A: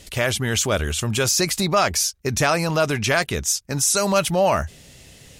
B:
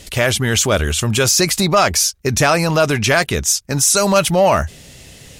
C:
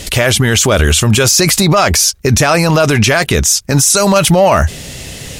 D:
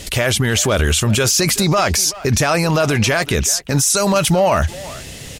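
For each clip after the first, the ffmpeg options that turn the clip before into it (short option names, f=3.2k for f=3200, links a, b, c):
-af "acontrast=53"
-af "alimiter=level_in=13.5dB:limit=-1dB:release=50:level=0:latency=1,volume=-1dB"
-filter_complex "[0:a]asplit=2[a][b];[b]adelay=380,highpass=300,lowpass=3.4k,asoftclip=type=hard:threshold=-10dB,volume=-14dB[c];[a][c]amix=inputs=2:normalize=0,volume=-5.5dB"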